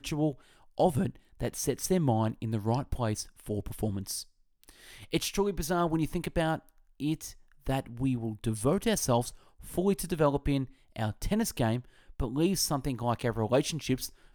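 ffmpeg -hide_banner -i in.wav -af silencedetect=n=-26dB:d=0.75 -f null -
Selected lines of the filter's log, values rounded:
silence_start: 4.16
silence_end: 5.14 | silence_duration: 0.98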